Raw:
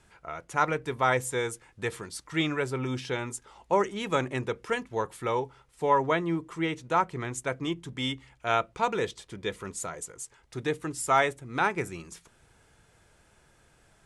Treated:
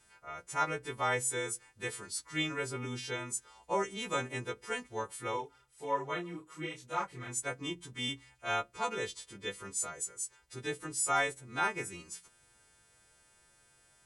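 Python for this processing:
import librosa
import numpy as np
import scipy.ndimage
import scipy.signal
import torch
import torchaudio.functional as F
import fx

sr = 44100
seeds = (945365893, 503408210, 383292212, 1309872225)

y = fx.freq_snap(x, sr, grid_st=2)
y = fx.detune_double(y, sr, cents=fx.line((5.36, 13.0), (7.28, 31.0)), at=(5.36, 7.28), fade=0.02)
y = y * 10.0 ** (-7.5 / 20.0)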